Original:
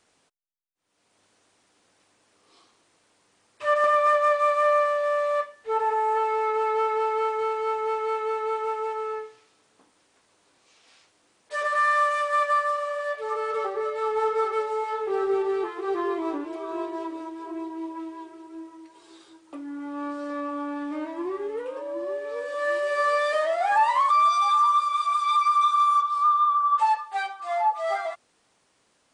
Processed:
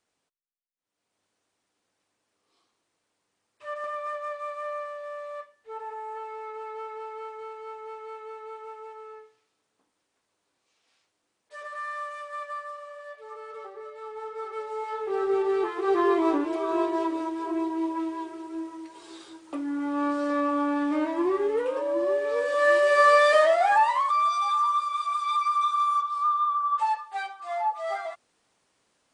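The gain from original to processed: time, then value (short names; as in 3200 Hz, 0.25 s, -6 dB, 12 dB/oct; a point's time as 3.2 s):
14.29 s -13 dB
14.82 s -4.5 dB
16.15 s +5.5 dB
23.45 s +5.5 dB
24.04 s -4 dB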